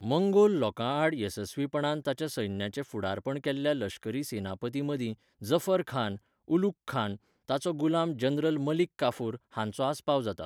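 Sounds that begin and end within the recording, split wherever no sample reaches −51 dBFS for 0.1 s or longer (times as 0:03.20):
0:05.41–0:06.18
0:06.48–0:06.72
0:06.88–0:07.17
0:07.48–0:08.87
0:08.99–0:09.37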